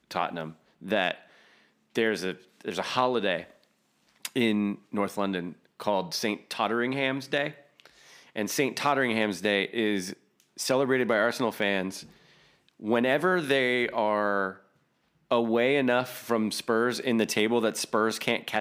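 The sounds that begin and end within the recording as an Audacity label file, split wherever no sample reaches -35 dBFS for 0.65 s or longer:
1.950000	3.430000	sound
4.250000	12.010000	sound
12.820000	14.520000	sound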